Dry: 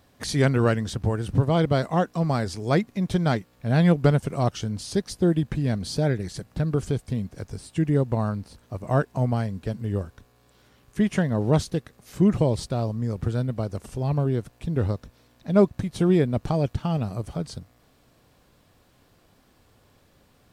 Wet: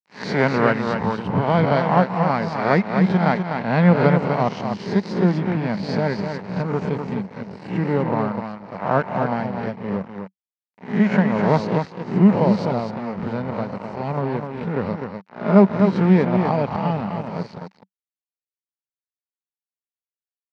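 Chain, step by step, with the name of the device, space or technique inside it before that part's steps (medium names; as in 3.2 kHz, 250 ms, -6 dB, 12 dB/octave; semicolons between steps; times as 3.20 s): reverse spectral sustain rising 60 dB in 0.66 s; delay 252 ms -5.5 dB; blown loudspeaker (crossover distortion -33.5 dBFS; cabinet simulation 190–4200 Hz, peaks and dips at 190 Hz +9 dB, 330 Hz -5 dB, 910 Hz +8 dB, 2.1 kHz +4 dB, 3.4 kHz -9 dB); trim +3 dB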